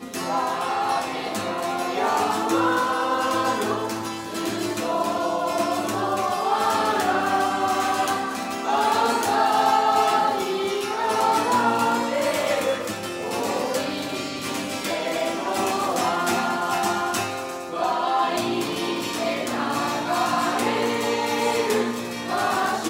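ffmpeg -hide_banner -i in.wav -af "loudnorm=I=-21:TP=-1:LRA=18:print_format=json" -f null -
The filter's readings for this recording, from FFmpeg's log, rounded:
"input_i" : "-23.3",
"input_tp" : "-7.4",
"input_lra" : "3.4",
"input_thresh" : "-33.3",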